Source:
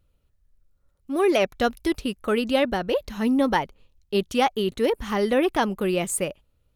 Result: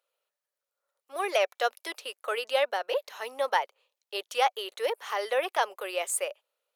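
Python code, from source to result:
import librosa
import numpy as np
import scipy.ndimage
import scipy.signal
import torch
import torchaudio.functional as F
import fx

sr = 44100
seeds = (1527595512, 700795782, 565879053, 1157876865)

y = scipy.signal.sosfilt(scipy.signal.butter(6, 500.0, 'highpass', fs=sr, output='sos'), x)
y = y * librosa.db_to_amplitude(-2.5)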